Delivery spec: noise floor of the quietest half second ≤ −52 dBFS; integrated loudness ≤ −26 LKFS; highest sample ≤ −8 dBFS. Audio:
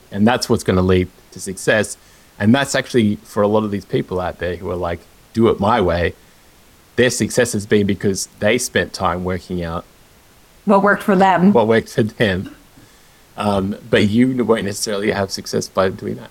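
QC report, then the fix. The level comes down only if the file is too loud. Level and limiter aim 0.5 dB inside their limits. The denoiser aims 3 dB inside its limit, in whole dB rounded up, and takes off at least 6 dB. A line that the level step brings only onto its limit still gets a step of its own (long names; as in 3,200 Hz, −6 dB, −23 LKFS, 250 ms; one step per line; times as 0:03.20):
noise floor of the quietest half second −49 dBFS: out of spec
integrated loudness −17.5 LKFS: out of spec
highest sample −2.5 dBFS: out of spec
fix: level −9 dB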